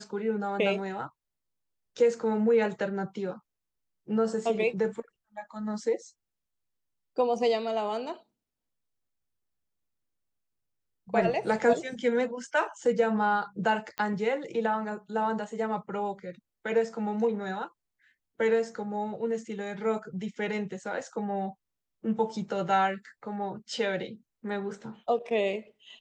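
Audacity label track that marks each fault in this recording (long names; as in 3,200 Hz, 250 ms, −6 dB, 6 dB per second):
13.980000	13.980000	click −20 dBFS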